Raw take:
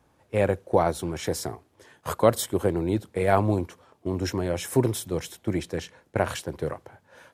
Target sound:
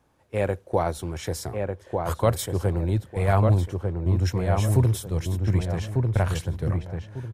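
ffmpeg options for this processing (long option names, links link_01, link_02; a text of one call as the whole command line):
ffmpeg -i in.wav -filter_complex "[0:a]asubboost=boost=8:cutoff=110,asplit=2[link_01][link_02];[link_02]adelay=1197,lowpass=frequency=1700:poles=1,volume=-3.5dB,asplit=2[link_03][link_04];[link_04]adelay=1197,lowpass=frequency=1700:poles=1,volume=0.28,asplit=2[link_05][link_06];[link_06]adelay=1197,lowpass=frequency=1700:poles=1,volume=0.28,asplit=2[link_07][link_08];[link_08]adelay=1197,lowpass=frequency=1700:poles=1,volume=0.28[link_09];[link_03][link_05][link_07][link_09]amix=inputs=4:normalize=0[link_10];[link_01][link_10]amix=inputs=2:normalize=0,volume=-2dB" out.wav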